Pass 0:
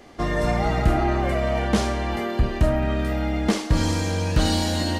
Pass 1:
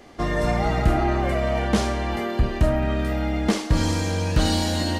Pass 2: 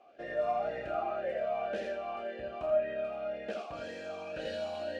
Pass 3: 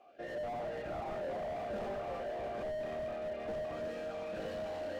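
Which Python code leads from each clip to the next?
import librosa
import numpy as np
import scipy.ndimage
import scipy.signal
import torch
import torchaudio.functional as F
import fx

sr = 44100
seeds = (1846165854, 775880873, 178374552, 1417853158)

y1 = x
y2 = y1 + 10.0 ** (-4.5 / 20.0) * np.pad(y1, (int(82 * sr / 1000.0), 0))[:len(y1)]
y2 = fx.vowel_sweep(y2, sr, vowels='a-e', hz=1.9)
y2 = F.gain(torch.from_numpy(y2), -2.5).numpy()
y3 = y2 + 10.0 ** (-5.0 / 20.0) * np.pad(y2, (int(843 * sr / 1000.0), 0))[:len(y2)]
y3 = fx.slew_limit(y3, sr, full_power_hz=10.0)
y3 = F.gain(torch.from_numpy(y3), -1.0).numpy()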